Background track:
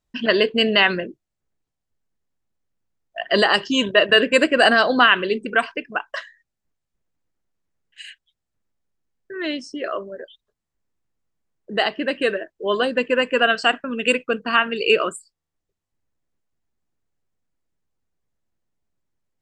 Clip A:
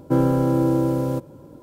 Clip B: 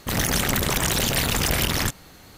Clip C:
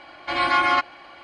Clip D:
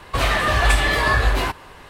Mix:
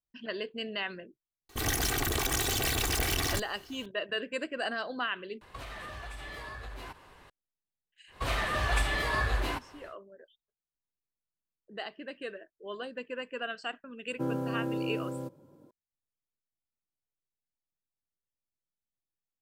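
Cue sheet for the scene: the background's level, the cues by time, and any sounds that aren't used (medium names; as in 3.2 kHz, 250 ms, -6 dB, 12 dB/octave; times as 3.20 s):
background track -19 dB
1.49 s: add B -6.5 dB + comb filter that takes the minimum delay 2.6 ms
5.41 s: replace with D -13 dB + compression 16:1, threshold -25 dBFS
8.07 s: add D -11.5 dB, fades 0.10 s
14.09 s: add A -13.5 dB + high-pass 120 Hz
not used: C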